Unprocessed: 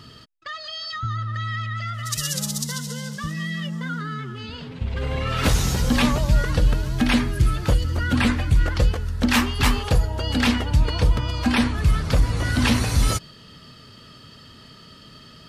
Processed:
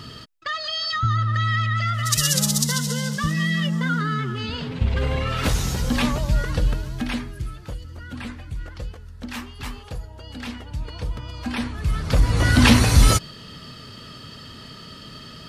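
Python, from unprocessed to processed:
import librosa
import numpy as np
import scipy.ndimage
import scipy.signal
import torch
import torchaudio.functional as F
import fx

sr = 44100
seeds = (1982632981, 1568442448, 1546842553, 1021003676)

y = fx.gain(x, sr, db=fx.line((4.85, 6.0), (5.47, -2.5), (6.68, -2.5), (7.63, -14.0), (10.39, -14.0), (11.81, -6.0), (12.44, 5.5)))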